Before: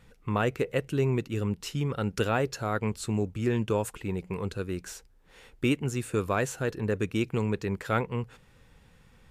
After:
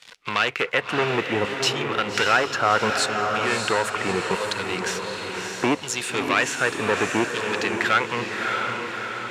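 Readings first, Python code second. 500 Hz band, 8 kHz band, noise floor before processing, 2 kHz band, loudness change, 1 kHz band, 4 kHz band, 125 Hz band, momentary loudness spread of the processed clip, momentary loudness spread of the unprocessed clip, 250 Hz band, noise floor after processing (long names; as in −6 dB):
+5.0 dB, +11.0 dB, −59 dBFS, +14.5 dB, +7.0 dB, +12.0 dB, +15.5 dB, −5.5 dB, 7 LU, 7 LU, +1.5 dB, −37 dBFS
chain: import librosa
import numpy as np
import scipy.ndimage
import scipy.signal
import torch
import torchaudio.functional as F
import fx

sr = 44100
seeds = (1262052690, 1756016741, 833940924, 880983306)

p1 = fx.leveller(x, sr, passes=3)
p2 = fx.filter_lfo_bandpass(p1, sr, shape='saw_down', hz=0.69, low_hz=850.0, high_hz=4800.0, q=1.2)
p3 = p2 + fx.echo_diffused(p2, sr, ms=621, feedback_pct=47, wet_db=-6, dry=0)
p4 = fx.band_squash(p3, sr, depth_pct=40)
y = F.gain(torch.from_numpy(p4), 8.5).numpy()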